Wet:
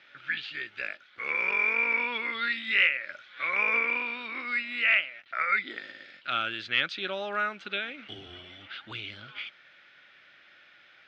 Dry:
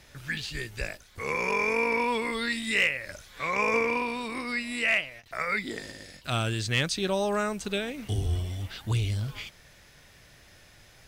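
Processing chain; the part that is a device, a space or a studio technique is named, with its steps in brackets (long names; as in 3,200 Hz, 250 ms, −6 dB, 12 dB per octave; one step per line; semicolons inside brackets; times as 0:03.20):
phone earpiece (loudspeaker in its box 410–3,600 Hz, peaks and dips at 450 Hz −9 dB, 700 Hz −6 dB, 990 Hz −8 dB, 1,400 Hz +9 dB, 2,300 Hz +4 dB, 3,300 Hz +4 dB)
level −1 dB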